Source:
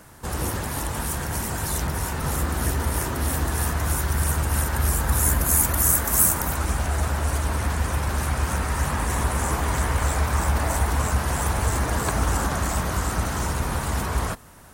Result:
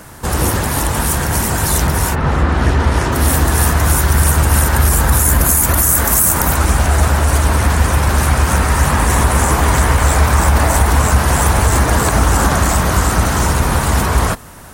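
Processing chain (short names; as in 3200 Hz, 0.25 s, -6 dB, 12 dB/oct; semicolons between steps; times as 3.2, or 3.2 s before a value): 2.14–3.11 LPF 2400 Hz -> 5400 Hz 12 dB/oct; maximiser +12.5 dB; gain -1 dB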